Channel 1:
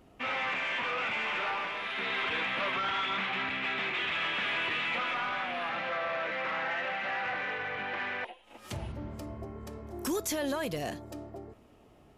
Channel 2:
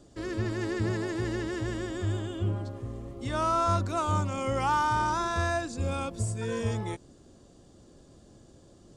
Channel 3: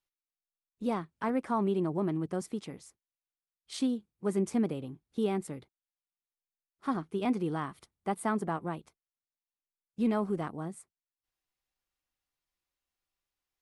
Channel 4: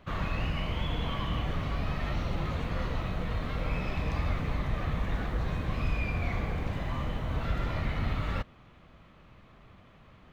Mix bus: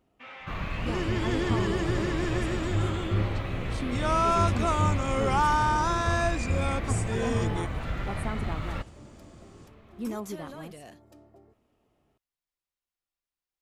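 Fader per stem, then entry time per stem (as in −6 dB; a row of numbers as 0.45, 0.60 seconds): −12.0, +2.0, −5.5, −1.5 decibels; 0.00, 0.70, 0.00, 0.40 seconds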